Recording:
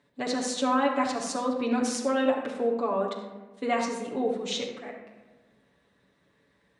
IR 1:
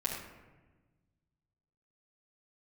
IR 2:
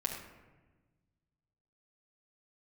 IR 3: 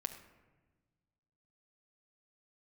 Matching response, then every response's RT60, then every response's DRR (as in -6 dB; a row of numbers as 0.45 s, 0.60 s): 2; 1.2 s, 1.2 s, 1.3 s; -7.0 dB, -2.5 dB, 5.0 dB